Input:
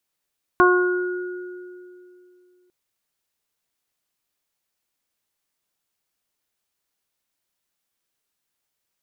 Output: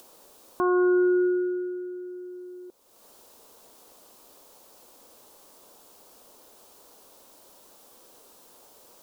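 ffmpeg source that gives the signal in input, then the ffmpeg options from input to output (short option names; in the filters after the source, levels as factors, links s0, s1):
-f lavfi -i "aevalsrc='0.211*pow(10,-3*t/2.76)*sin(2*PI*361*t)+0.0841*pow(10,-3*t/0.71)*sin(2*PI*722*t)+0.224*pow(10,-3*t/0.68)*sin(2*PI*1083*t)+0.15*pow(10,-3*t/1.93)*sin(2*PI*1444*t)':d=2.1:s=44100"
-af "equalizer=f=125:t=o:w=1:g=-7,equalizer=f=250:t=o:w=1:g=6,equalizer=f=500:t=o:w=1:g=11,equalizer=f=1000:t=o:w=1:g=7,equalizer=f=2000:t=o:w=1:g=-10,acompressor=mode=upward:threshold=0.0224:ratio=2.5,alimiter=limit=0.178:level=0:latency=1:release=486"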